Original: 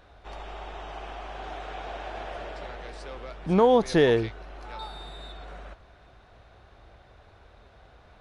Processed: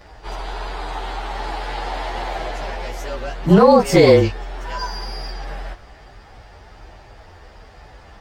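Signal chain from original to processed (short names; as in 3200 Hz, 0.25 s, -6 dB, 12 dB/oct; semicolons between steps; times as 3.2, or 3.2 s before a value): inharmonic rescaling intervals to 110%; maximiser +15 dB; gain -1 dB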